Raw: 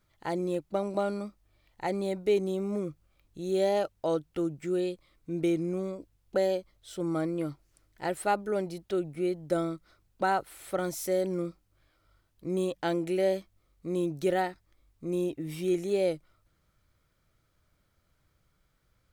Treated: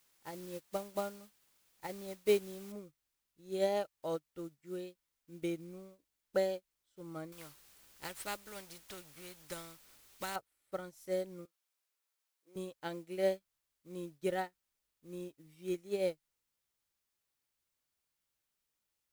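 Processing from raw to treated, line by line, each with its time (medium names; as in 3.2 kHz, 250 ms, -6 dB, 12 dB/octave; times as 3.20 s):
2.72 s: noise floor step -43 dB -54 dB
7.32–10.36 s: spectrum-flattening compressor 2:1
11.45–12.56 s: high-pass 470 Hz
whole clip: band-stop 700 Hz, Q 12; dynamic bell 310 Hz, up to -4 dB, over -40 dBFS, Q 1.4; upward expansion 2.5:1, over -45 dBFS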